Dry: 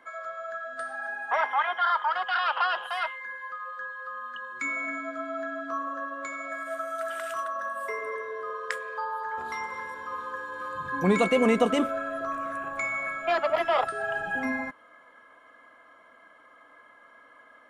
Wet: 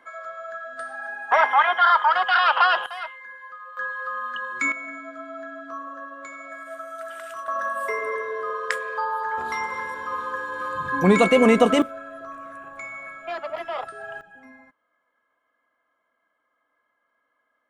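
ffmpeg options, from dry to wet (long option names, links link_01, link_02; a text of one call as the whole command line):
ffmpeg -i in.wav -af "asetnsamples=nb_out_samples=441:pad=0,asendcmd='1.32 volume volume 8dB;2.86 volume volume -3dB;3.77 volume volume 7.5dB;4.72 volume volume -3dB;7.48 volume volume 6dB;11.82 volume volume -6dB;14.21 volume volume -18.5dB',volume=1dB" out.wav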